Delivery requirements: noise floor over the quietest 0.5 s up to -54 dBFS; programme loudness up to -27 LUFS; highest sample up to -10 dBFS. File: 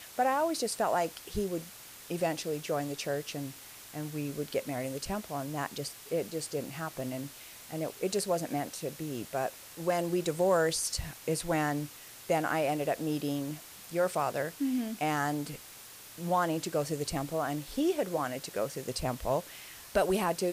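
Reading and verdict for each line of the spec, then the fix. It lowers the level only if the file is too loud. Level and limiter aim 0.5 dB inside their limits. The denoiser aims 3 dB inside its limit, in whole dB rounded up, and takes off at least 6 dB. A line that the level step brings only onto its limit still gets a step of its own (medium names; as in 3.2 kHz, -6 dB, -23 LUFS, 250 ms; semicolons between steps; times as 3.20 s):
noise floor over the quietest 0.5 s -50 dBFS: fail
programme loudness -33.0 LUFS: pass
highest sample -16.5 dBFS: pass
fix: noise reduction 7 dB, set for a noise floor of -50 dBFS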